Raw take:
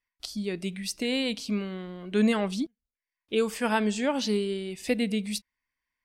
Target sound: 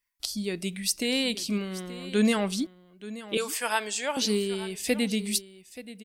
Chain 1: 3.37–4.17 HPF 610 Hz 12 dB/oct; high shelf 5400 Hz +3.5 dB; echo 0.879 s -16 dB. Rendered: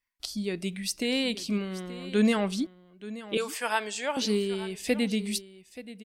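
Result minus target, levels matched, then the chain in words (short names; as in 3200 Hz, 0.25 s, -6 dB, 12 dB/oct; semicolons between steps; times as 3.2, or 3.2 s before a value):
8000 Hz band -4.5 dB
3.37–4.17 HPF 610 Hz 12 dB/oct; high shelf 5400 Hz +12 dB; echo 0.879 s -16 dB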